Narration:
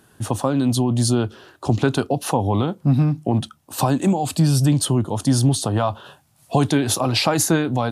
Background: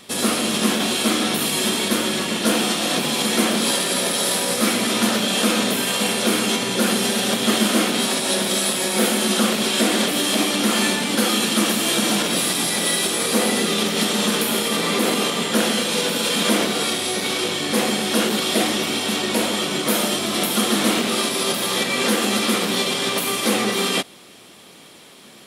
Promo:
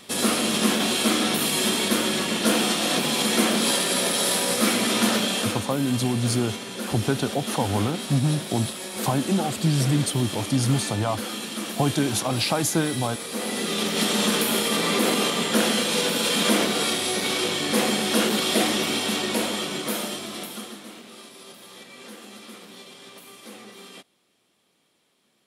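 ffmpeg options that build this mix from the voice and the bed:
-filter_complex "[0:a]adelay=5250,volume=-5dB[a];[1:a]volume=8.5dB,afade=t=out:st=5.18:d=0.44:silence=0.298538,afade=t=in:st=13.31:d=0.81:silence=0.298538,afade=t=out:st=18.91:d=1.9:silence=0.0891251[b];[a][b]amix=inputs=2:normalize=0"

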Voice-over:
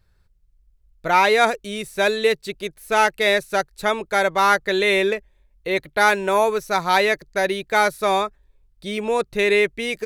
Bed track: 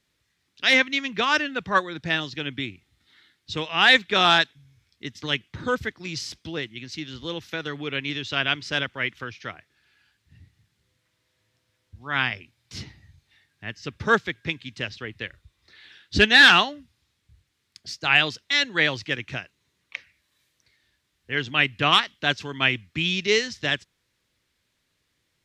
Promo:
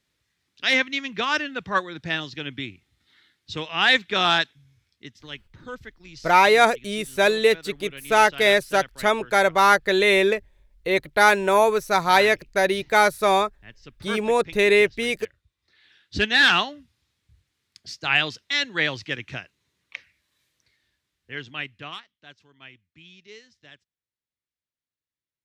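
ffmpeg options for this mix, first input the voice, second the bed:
-filter_complex "[0:a]adelay=5200,volume=0.5dB[a];[1:a]volume=8dB,afade=t=out:st=4.73:d=0.52:silence=0.316228,afade=t=in:st=15.58:d=1.19:silence=0.316228,afade=t=out:st=20.56:d=1.48:silence=0.0749894[b];[a][b]amix=inputs=2:normalize=0"

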